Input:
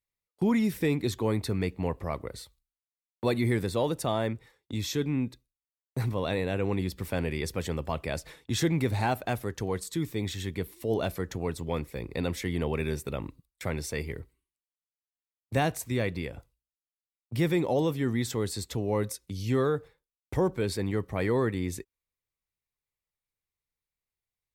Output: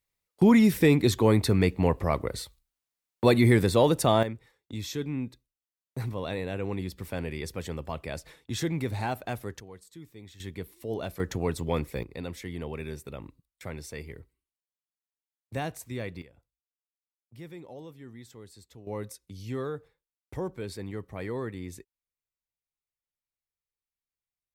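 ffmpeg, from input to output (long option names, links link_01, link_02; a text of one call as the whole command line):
ffmpeg -i in.wav -af "asetnsamples=nb_out_samples=441:pad=0,asendcmd='4.23 volume volume -3.5dB;9.6 volume volume -16dB;10.4 volume volume -5dB;11.2 volume volume 3dB;12.03 volume volume -6.5dB;16.22 volume volume -18dB;18.87 volume volume -7.5dB',volume=6.5dB" out.wav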